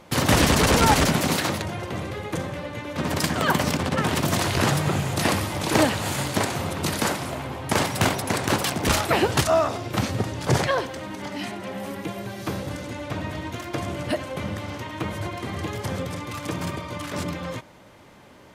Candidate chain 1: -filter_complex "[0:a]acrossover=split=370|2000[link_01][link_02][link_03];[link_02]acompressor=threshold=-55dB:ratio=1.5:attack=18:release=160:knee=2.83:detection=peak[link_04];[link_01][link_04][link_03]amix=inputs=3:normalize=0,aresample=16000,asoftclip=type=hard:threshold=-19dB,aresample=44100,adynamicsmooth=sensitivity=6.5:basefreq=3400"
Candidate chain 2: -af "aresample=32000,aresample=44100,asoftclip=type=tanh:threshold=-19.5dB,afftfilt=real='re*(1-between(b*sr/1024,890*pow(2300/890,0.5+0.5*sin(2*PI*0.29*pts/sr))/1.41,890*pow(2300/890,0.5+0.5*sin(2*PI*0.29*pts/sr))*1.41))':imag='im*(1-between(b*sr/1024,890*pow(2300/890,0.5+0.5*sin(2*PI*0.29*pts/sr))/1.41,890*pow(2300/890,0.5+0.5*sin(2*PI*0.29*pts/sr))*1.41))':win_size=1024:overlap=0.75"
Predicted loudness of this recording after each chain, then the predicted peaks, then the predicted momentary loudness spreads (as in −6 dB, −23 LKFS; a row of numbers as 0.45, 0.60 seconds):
−28.5, −28.5 LKFS; −15.0, −16.0 dBFS; 10, 9 LU